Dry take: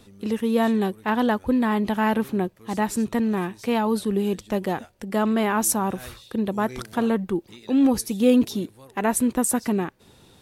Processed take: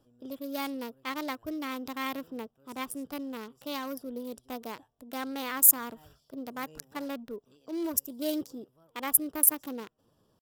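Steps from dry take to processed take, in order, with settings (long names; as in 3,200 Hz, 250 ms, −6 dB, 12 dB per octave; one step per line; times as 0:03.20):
adaptive Wiener filter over 25 samples
first-order pre-emphasis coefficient 0.9
pitch shifter +3.5 semitones
level +4.5 dB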